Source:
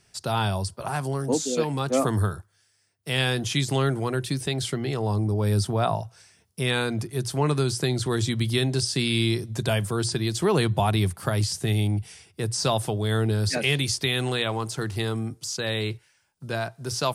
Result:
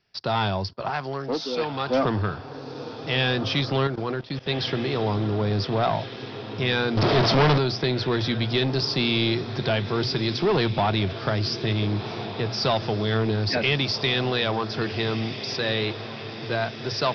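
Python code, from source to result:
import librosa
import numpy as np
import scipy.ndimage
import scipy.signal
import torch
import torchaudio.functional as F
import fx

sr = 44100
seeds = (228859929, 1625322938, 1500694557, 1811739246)

p1 = x + fx.echo_diffused(x, sr, ms=1455, feedback_pct=61, wet_db=-13.0, dry=0)
p2 = fx.level_steps(p1, sr, step_db=15, at=(3.87, 4.49))
p3 = fx.leveller(p2, sr, passes=2)
p4 = fx.low_shelf(p3, sr, hz=400.0, db=-8.0, at=(0.9, 1.89))
p5 = fx.leveller(p4, sr, passes=5, at=(6.97, 7.58))
p6 = scipy.signal.sosfilt(scipy.signal.butter(16, 5400.0, 'lowpass', fs=sr, output='sos'), p5)
p7 = fx.peak_eq(p6, sr, hz=71.0, db=-6.5, octaves=2.2)
y = p7 * 10.0 ** (-3.5 / 20.0)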